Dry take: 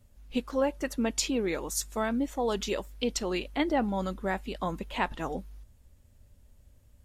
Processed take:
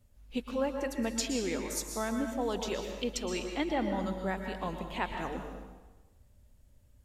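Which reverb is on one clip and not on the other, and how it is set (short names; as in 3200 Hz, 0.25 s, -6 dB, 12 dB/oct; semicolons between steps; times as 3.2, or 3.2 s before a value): plate-style reverb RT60 1.2 s, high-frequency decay 0.9×, pre-delay 0.105 s, DRR 4.5 dB; gain -4.5 dB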